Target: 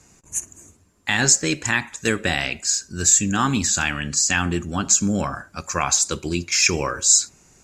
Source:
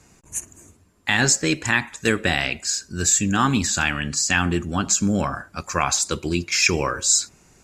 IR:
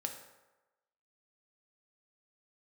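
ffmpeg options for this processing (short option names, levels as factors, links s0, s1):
-filter_complex "[0:a]equalizer=f=6600:w=2:g=5.5,asplit=2[s0][s1];[1:a]atrim=start_sample=2205,atrim=end_sample=3528[s2];[s1][s2]afir=irnorm=-1:irlink=0,volume=0.188[s3];[s0][s3]amix=inputs=2:normalize=0,volume=0.75"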